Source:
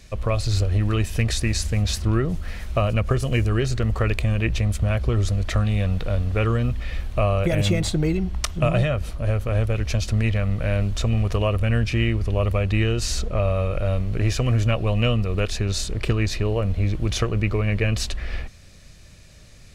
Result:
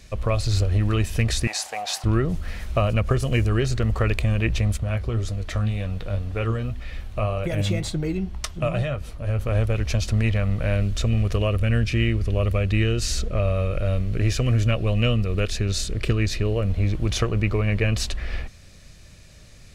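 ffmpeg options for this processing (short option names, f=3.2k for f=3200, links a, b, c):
-filter_complex "[0:a]asettb=1/sr,asplit=3[a][b][c];[a]atrim=end=1.474[d];[b]atrim=start=1.47:end=2.04,asetpts=PTS-STARTPTS,afade=t=in:d=0.004:c=qsin,afade=t=out:st=0.566:d=0.004:c=qsin,highpass=f=770:t=q:w=7.7[e];[c]atrim=start=2.036[f];[d][e]acrossfade=d=0.004:c1=hsin:c2=qsin[g];[g][f]acrossfade=d=0.004:c1=qsin:c2=hsin,asettb=1/sr,asplit=3[h][i][j];[h]atrim=end=4.774[k];[i]atrim=start=4.77:end=9.39,asetpts=PTS-STARTPTS,afade=t=in:d=0.004:c=qsin,afade=t=out:st=4.616:d=0.004:c=qsin,flanger=delay=6.2:depth=4.9:regen=65:speed=1.9:shape=triangular[l];[j]atrim=start=9.386[m];[k][l]acrossfade=d=0.004:c1=hsin:c2=qsin[n];[n][m]acrossfade=d=0.004:c1=qsin:c2=hsin,asettb=1/sr,asplit=3[o][p][q];[o]atrim=end=10.754[r];[p]atrim=start=10.75:end=16.7,asetpts=PTS-STARTPTS,afade=t=in:d=0.004:c=qsin,afade=t=out:st=5.946:d=0.004:c=qsin,equalizer=f=880:t=o:w=0.62:g=-8[s];[q]atrim=start=16.696[t];[r][s]acrossfade=d=0.004:c1=hsin:c2=qsin[u];[u][t]acrossfade=d=0.004:c1=qsin:c2=hsin"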